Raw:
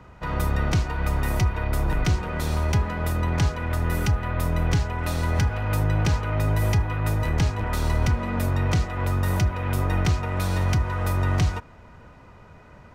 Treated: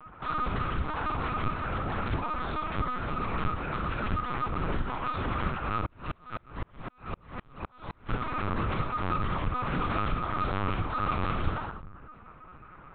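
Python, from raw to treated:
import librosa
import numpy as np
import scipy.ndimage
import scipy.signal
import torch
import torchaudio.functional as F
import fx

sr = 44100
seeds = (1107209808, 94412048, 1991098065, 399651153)

y = fx.dereverb_blind(x, sr, rt60_s=0.92)
y = fx.highpass(y, sr, hz=140.0, slope=6)
y = fx.peak_eq(y, sr, hz=1300.0, db=12.5, octaves=0.55)
y = np.clip(y, -10.0 ** (-26.5 / 20.0), 10.0 ** (-26.5 / 20.0))
y = fx.room_flutter(y, sr, wall_m=10.7, rt60_s=0.41)
y = fx.room_shoebox(y, sr, seeds[0], volume_m3=2200.0, walls='furnished', distance_m=4.1)
y = fx.lpc_vocoder(y, sr, seeds[1], excitation='pitch_kept', order=8)
y = fx.tremolo_decay(y, sr, direction='swelling', hz=3.9, depth_db=38, at=(5.86, 8.09))
y = y * 10.0 ** (-7.0 / 20.0)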